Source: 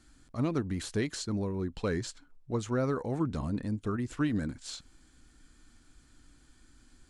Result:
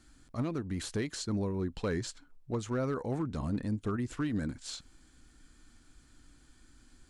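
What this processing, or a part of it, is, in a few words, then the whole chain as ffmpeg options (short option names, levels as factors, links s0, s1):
limiter into clipper: -af "alimiter=limit=0.0668:level=0:latency=1:release=263,asoftclip=type=hard:threshold=0.0531"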